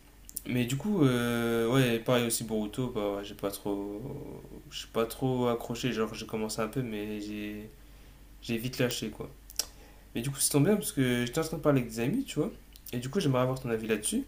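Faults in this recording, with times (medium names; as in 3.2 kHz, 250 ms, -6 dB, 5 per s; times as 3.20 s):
8.91 s: pop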